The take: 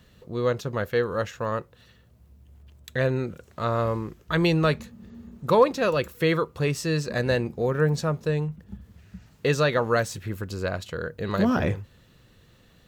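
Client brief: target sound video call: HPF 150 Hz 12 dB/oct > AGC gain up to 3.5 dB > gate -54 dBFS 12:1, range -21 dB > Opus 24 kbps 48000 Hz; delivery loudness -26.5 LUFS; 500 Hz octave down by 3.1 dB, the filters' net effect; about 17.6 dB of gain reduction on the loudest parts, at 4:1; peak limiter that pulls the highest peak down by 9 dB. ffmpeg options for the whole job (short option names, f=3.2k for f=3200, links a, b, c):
-af "equalizer=f=500:t=o:g=-3.5,acompressor=threshold=-38dB:ratio=4,alimiter=level_in=7.5dB:limit=-24dB:level=0:latency=1,volume=-7.5dB,highpass=150,dynaudnorm=m=3.5dB,agate=range=-21dB:threshold=-54dB:ratio=12,volume=17.5dB" -ar 48000 -c:a libopus -b:a 24k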